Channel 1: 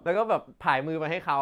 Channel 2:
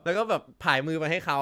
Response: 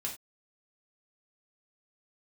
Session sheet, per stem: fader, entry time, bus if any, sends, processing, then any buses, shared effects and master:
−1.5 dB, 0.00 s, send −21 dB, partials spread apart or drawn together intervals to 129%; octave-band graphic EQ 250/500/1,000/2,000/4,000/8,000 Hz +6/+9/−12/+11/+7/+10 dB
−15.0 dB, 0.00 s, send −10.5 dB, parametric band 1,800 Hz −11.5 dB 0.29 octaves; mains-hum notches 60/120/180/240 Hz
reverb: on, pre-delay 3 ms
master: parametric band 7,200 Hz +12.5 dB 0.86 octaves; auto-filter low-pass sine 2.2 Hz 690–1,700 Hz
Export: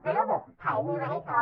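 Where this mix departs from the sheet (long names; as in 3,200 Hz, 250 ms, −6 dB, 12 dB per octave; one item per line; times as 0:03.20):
stem 1: missing octave-band graphic EQ 250/500/1,000/2,000/4,000/8,000 Hz +6/+9/−12/+11/+7/+10 dB
master: missing parametric band 7,200 Hz +12.5 dB 0.86 octaves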